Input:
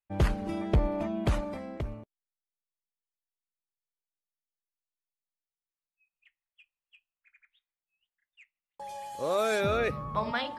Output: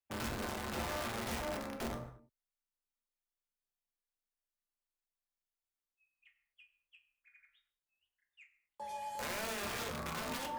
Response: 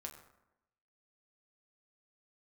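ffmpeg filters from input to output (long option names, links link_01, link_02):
-filter_complex "[0:a]alimiter=level_in=5dB:limit=-24dB:level=0:latency=1:release=81,volume=-5dB,afreqshift=15,aeval=exprs='(mod(39.8*val(0)+1,2)-1)/39.8':channel_layout=same[link_01];[1:a]atrim=start_sample=2205,afade=type=out:start_time=0.3:duration=0.01,atrim=end_sample=13671[link_02];[link_01][link_02]afir=irnorm=-1:irlink=0,volume=1.5dB"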